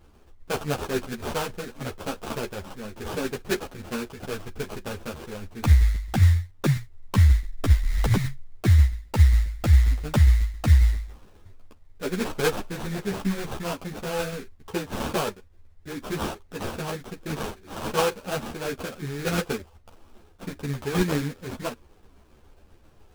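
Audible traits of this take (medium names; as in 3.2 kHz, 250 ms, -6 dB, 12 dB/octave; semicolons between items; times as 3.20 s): tremolo saw down 7.4 Hz, depth 40%; aliases and images of a low sample rate 2 kHz, jitter 20%; a shimmering, thickened sound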